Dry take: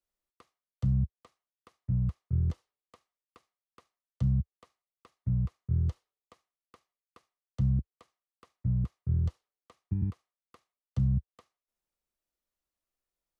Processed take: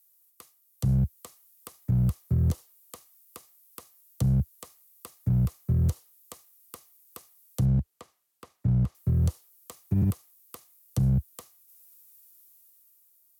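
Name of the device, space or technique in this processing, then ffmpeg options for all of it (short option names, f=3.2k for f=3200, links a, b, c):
FM broadcast chain: -filter_complex "[0:a]asettb=1/sr,asplit=3[a][b][c];[a]atrim=end=7.654[d];[b]atrim=start=7.65:end=8.95,asetpts=PTS-STARTPTS,afade=t=in:d=0.004:c=qsin,afade=t=out:st=1.296:d=0.004:c=qsin,aemphasis=mode=reproduction:type=75fm[e];[c]atrim=start=8.946[f];[d][e]acrossfade=d=0.004:c1=hsin:c2=qsin[g];[g][f]acrossfade=d=0.004:c1=qsin:c2=hsin,highpass=51,dynaudnorm=f=150:g=13:m=8dB,acrossover=split=110|970[h][i][j];[h]acompressor=threshold=-29dB:ratio=4[k];[i]acompressor=threshold=-20dB:ratio=4[l];[j]acompressor=threshold=-57dB:ratio=4[m];[k][l][m]amix=inputs=3:normalize=0,aemphasis=mode=production:type=50fm,alimiter=limit=-20dB:level=0:latency=1:release=56,asoftclip=type=hard:threshold=-21.5dB,lowpass=f=15k:w=0.5412,lowpass=f=15k:w=1.3066,aemphasis=mode=production:type=50fm,volume=4dB"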